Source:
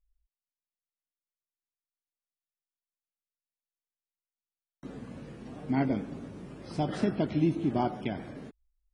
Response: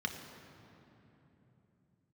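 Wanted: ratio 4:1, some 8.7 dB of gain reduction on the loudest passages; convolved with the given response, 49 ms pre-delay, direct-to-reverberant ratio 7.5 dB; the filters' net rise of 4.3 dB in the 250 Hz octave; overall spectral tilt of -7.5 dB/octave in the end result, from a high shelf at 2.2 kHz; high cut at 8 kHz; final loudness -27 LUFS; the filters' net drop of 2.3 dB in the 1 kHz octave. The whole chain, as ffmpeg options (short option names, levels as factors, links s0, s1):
-filter_complex "[0:a]lowpass=8000,equalizer=f=250:t=o:g=5.5,equalizer=f=1000:t=o:g=-5,highshelf=f=2200:g=4.5,acompressor=threshold=0.0398:ratio=4,asplit=2[s0][s1];[1:a]atrim=start_sample=2205,adelay=49[s2];[s1][s2]afir=irnorm=-1:irlink=0,volume=0.282[s3];[s0][s3]amix=inputs=2:normalize=0,volume=2.24"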